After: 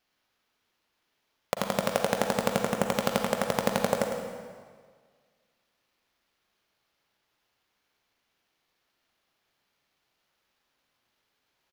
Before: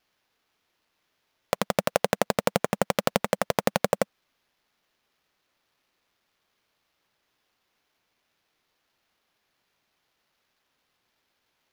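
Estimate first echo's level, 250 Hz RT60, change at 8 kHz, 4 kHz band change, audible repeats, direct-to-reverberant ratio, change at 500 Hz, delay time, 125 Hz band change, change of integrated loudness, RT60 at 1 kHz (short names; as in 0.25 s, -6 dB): -9.0 dB, 1.7 s, -2.0 dB, -1.5 dB, 1, 2.5 dB, -2.0 dB, 0.106 s, -1.5 dB, -2.0 dB, 1.7 s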